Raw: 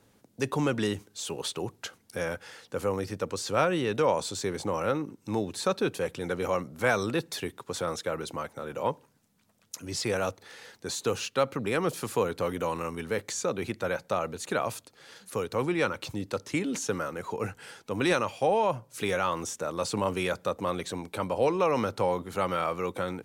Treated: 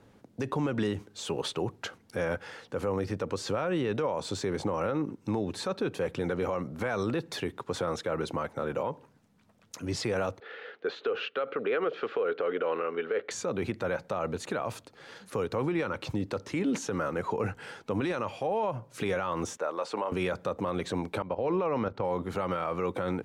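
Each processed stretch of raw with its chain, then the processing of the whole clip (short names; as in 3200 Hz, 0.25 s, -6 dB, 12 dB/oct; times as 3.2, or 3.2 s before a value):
10.4–13.31 speaker cabinet 430–3400 Hz, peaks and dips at 440 Hz +9 dB, 930 Hz -9 dB, 1400 Hz +6 dB, 3100 Hz +3 dB + compressor, threshold -26 dBFS
19.57–20.12 HPF 500 Hz + high shelf 4500 Hz -11 dB
21.22–22.05 level quantiser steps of 15 dB + air absorption 130 m
whole clip: LPF 2000 Hz 6 dB/oct; compressor, threshold -28 dBFS; limiter -26.5 dBFS; gain +5.5 dB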